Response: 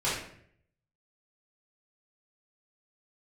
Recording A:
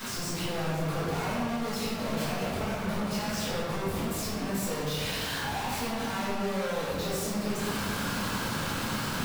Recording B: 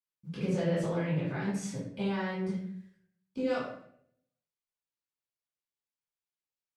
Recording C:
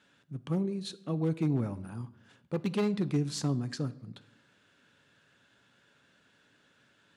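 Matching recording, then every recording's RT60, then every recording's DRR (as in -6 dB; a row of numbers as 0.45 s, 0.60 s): B; 2.2 s, 0.65 s, 0.90 s; -14.0 dB, -11.5 dB, 13.5 dB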